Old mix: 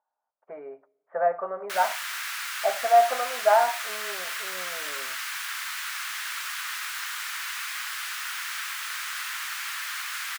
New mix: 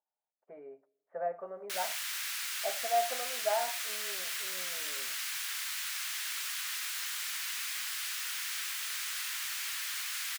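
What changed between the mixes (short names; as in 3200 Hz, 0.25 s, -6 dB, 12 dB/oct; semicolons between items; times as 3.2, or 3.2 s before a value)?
speech -5.0 dB; master: add bell 1200 Hz -11.5 dB 1.8 oct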